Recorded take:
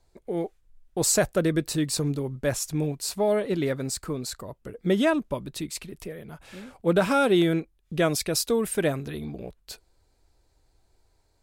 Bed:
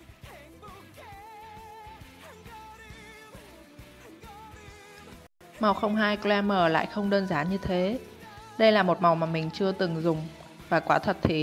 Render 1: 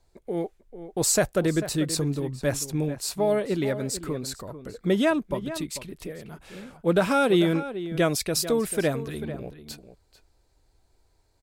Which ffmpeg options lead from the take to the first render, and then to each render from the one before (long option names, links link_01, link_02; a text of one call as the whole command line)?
ffmpeg -i in.wav -filter_complex "[0:a]asplit=2[link_01][link_02];[link_02]adelay=443.1,volume=-12dB,highshelf=frequency=4000:gain=-9.97[link_03];[link_01][link_03]amix=inputs=2:normalize=0" out.wav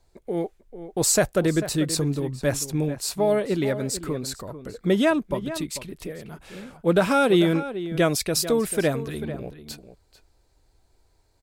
ffmpeg -i in.wav -af "volume=2dB" out.wav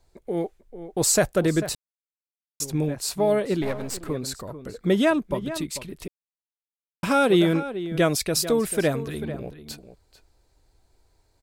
ffmpeg -i in.wav -filter_complex "[0:a]asettb=1/sr,asplit=3[link_01][link_02][link_03];[link_01]atrim=end=3.624[link_04];[link_02]atrim=start=3.62:end=4.1,asetpts=PTS-STARTPTS,afade=type=in:duration=0.004:curve=qsin,afade=type=out:start_time=0.476:duration=0.004:curve=qsin,aeval=exprs='if(lt(val(0),0),0.251*val(0),val(0))':channel_layout=same[link_05];[link_03]atrim=start=4.096[link_06];[link_04][link_05]acrossfade=duration=0.004:curve1=hsin:curve2=qsin[link_07];[link_07][link_06]acrossfade=duration=0.004:curve1=qsin:curve2=hsin,asplit=5[link_08][link_09][link_10][link_11][link_12];[link_08]atrim=end=1.75,asetpts=PTS-STARTPTS,afade=type=out:start_time=1.746:duration=0.004:curve=hsin[link_13];[link_09]atrim=start=1.75:end=2.6,asetpts=PTS-STARTPTS,volume=0[link_14];[link_10]atrim=start=2.6:end=6.08,asetpts=PTS-STARTPTS,afade=type=in:duration=0.004:curve=hsin,afade=type=out:start_time=3.476:duration=0.004:curve=hsin[link_15];[link_11]atrim=start=6.08:end=7.03,asetpts=PTS-STARTPTS,volume=0[link_16];[link_12]atrim=start=7.03,asetpts=PTS-STARTPTS,afade=type=in:duration=0.004:curve=hsin[link_17];[link_13][link_14][link_15][link_16][link_17]concat=n=5:v=0:a=1" out.wav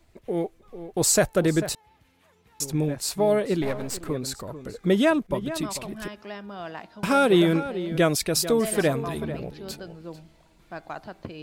ffmpeg -i in.wav -i bed.wav -filter_complex "[1:a]volume=-13.5dB[link_01];[0:a][link_01]amix=inputs=2:normalize=0" out.wav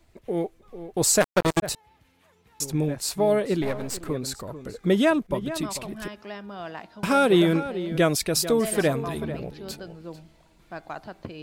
ffmpeg -i in.wav -filter_complex "[0:a]asplit=3[link_01][link_02][link_03];[link_01]afade=type=out:start_time=1.2:duration=0.02[link_04];[link_02]acrusher=bits=2:mix=0:aa=0.5,afade=type=in:start_time=1.2:duration=0.02,afade=type=out:start_time=1.62:duration=0.02[link_05];[link_03]afade=type=in:start_time=1.62:duration=0.02[link_06];[link_04][link_05][link_06]amix=inputs=3:normalize=0" out.wav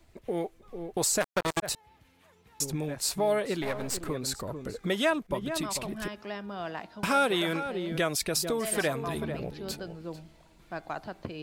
ffmpeg -i in.wav -filter_complex "[0:a]acrossover=split=630[link_01][link_02];[link_01]acompressor=threshold=-31dB:ratio=6[link_03];[link_02]alimiter=limit=-17dB:level=0:latency=1:release=461[link_04];[link_03][link_04]amix=inputs=2:normalize=0" out.wav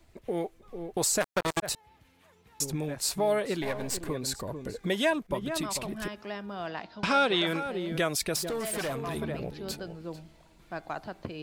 ffmpeg -i in.wav -filter_complex "[0:a]asettb=1/sr,asplit=3[link_01][link_02][link_03];[link_01]atrim=end=3.594[link_04];[link_02]atrim=start=3.59:end=5.14,asetpts=PTS-STARTPTS,afade=type=in:duration=0.004:curve=qsin,afade=type=out:start_time=1.546:duration=0.004:curve=qsin,asuperstop=centerf=1300:order=4:qfactor=7.5[link_05];[link_03]atrim=start=5.136[link_06];[link_04][link_05]acrossfade=duration=0.004:curve1=hsin:curve2=qsin[link_07];[link_07][link_06]acrossfade=duration=0.004:curve1=qsin:curve2=hsin,asettb=1/sr,asplit=3[link_08][link_09][link_10];[link_08]atrim=end=6.674[link_11];[link_09]atrim=start=6.67:end=7.47,asetpts=PTS-STARTPTS,afade=type=in:duration=0.004:curve=qsin,afade=type=out:start_time=0.796:duration=0.004:curve=qsin,lowpass=frequency=4700:width_type=q:width=1.6[link_12];[link_10]atrim=start=7.466[link_13];[link_11][link_12]acrossfade=duration=0.004:curve1=hsin:curve2=qsin[link_14];[link_14][link_13]acrossfade=duration=0.004:curve1=qsin:curve2=hsin,asettb=1/sr,asplit=3[link_15][link_16][link_17];[link_15]atrim=end=8.364[link_18];[link_16]atrim=start=8.36:end=9.16,asetpts=PTS-STARTPTS,afade=type=in:duration=0.004:curve=qsin,afade=type=out:start_time=0.796:duration=0.004:curve=qsin,asoftclip=type=hard:threshold=-29dB[link_19];[link_17]atrim=start=9.156[link_20];[link_18][link_19]acrossfade=duration=0.004:curve1=hsin:curve2=qsin[link_21];[link_21][link_20]acrossfade=duration=0.004:curve1=qsin:curve2=hsin" out.wav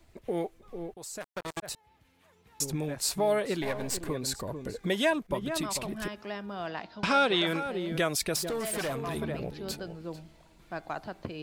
ffmpeg -i in.wav -filter_complex "[0:a]asplit=2[link_01][link_02];[link_01]atrim=end=0.94,asetpts=PTS-STARTPTS,afade=type=out:start_time=0.936:duration=0.004:curve=hsin:silence=0.105925[link_03];[link_02]atrim=start=0.94,asetpts=PTS-STARTPTS,afade=type=in:duration=1.77:silence=0.105925[link_04];[link_03][link_04]concat=n=2:v=0:a=1" out.wav